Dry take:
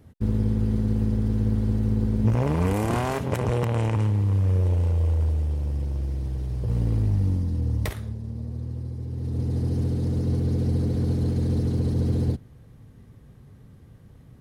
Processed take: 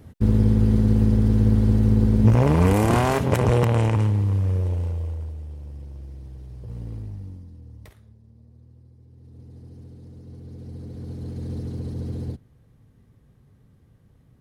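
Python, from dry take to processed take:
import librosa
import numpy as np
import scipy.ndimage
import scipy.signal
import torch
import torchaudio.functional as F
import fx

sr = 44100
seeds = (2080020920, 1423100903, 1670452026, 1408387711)

y = fx.gain(x, sr, db=fx.line((3.6, 5.5), (4.86, -3.5), (5.34, -10.5), (6.94, -10.5), (7.62, -18.5), (10.24, -18.5), (11.51, -7.0)))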